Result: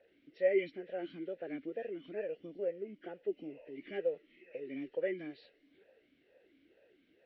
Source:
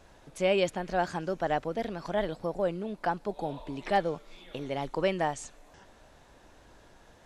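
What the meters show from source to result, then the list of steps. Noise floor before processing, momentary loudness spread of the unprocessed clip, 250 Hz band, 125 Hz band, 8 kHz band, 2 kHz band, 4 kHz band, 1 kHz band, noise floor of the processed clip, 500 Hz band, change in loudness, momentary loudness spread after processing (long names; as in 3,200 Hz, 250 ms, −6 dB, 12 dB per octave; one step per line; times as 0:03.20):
−58 dBFS, 12 LU, −7.5 dB, −19.0 dB, below −30 dB, −10.0 dB, −17.5 dB, −24.0 dB, −71 dBFS, −5.5 dB, −7.5 dB, 14 LU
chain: hearing-aid frequency compression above 1,400 Hz 1.5 to 1
formant filter swept between two vowels e-i 2.2 Hz
level +2 dB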